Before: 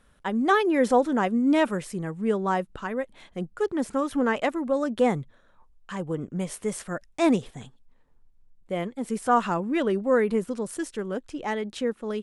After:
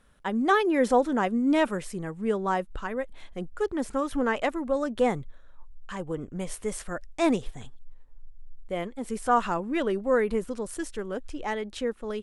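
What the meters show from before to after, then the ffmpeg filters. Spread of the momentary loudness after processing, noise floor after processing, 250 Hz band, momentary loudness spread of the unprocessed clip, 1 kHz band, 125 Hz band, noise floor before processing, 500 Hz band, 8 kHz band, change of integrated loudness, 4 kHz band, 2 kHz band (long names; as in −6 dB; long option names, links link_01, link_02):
13 LU, −49 dBFS, −2.5 dB, 12 LU, −1.0 dB, −4.0 dB, −59 dBFS, −1.5 dB, −1.0 dB, −2.0 dB, −1.0 dB, −1.0 dB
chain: -af "asubboost=boost=7:cutoff=57,volume=-1dB"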